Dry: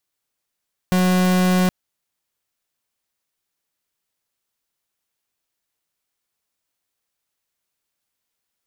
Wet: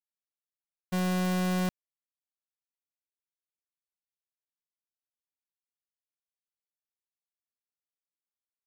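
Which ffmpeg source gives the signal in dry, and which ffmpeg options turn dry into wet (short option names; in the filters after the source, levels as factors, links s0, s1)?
-f lavfi -i "aevalsrc='0.15*(2*lt(mod(183*t,1),0.42)-1)':d=0.77:s=44100"
-af "agate=range=0.0224:threshold=0.282:ratio=3:detection=peak"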